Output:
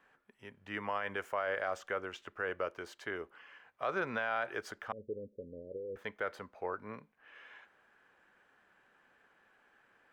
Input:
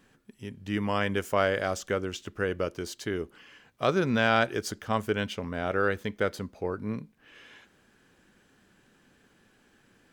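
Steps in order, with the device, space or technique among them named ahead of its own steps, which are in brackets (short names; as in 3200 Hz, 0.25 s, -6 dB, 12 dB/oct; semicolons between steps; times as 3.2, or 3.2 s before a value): DJ mixer with the lows and highs turned down (three-band isolator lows -19 dB, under 560 Hz, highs -18 dB, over 2300 Hz; limiter -25 dBFS, peak gain reduction 10 dB); 4.92–5.96 steep low-pass 540 Hz 96 dB/oct; gain +1 dB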